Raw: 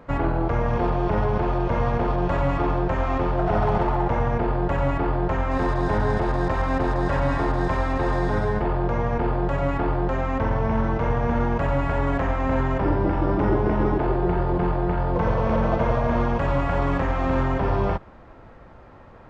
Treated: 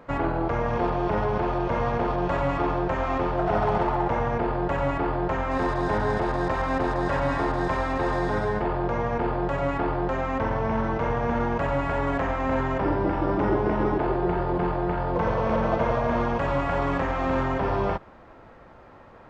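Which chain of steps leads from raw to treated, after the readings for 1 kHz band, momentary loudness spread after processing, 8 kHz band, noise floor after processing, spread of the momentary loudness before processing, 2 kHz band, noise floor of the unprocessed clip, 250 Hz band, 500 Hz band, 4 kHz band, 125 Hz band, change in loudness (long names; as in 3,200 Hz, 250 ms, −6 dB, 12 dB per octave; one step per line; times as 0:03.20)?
−0.5 dB, 2 LU, can't be measured, −49 dBFS, 2 LU, 0.0 dB, −46 dBFS, −2.0 dB, −1.0 dB, 0.0 dB, −5.5 dB, −2.0 dB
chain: low-shelf EQ 160 Hz −8 dB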